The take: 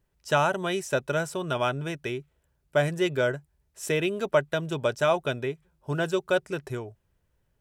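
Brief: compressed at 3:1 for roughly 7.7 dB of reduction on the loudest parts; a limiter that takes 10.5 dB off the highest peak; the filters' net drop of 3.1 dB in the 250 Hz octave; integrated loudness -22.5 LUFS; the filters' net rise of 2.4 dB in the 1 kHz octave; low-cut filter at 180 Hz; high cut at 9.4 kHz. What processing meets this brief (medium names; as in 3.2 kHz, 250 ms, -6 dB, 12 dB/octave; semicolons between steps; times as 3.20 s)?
high-pass 180 Hz; low-pass 9.4 kHz; peaking EQ 250 Hz -4 dB; peaking EQ 1 kHz +3.5 dB; compression 3:1, threshold -27 dBFS; trim +14 dB; peak limiter -10 dBFS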